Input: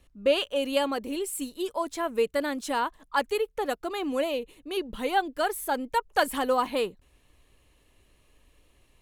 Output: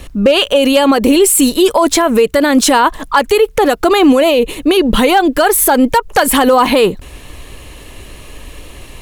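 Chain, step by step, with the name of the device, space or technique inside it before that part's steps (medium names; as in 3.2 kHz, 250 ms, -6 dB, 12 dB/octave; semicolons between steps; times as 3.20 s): loud club master (compression 3:1, threshold -29 dBFS, peak gain reduction 9 dB; hard clipper -22 dBFS, distortion -28 dB; loudness maximiser +30.5 dB); trim -1 dB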